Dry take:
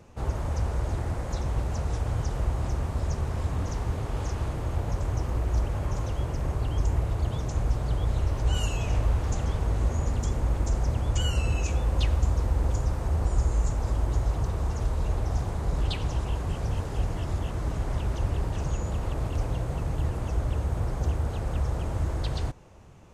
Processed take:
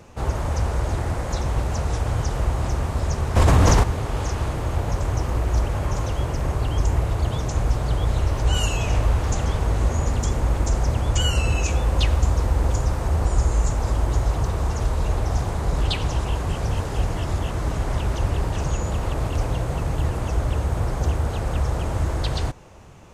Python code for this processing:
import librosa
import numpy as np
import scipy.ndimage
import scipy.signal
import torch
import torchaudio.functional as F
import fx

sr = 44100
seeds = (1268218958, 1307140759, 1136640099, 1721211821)

y = fx.env_flatten(x, sr, amount_pct=100, at=(3.35, 3.82), fade=0.02)
y = fx.low_shelf(y, sr, hz=490.0, db=-4.0)
y = y * 10.0 ** (8.5 / 20.0)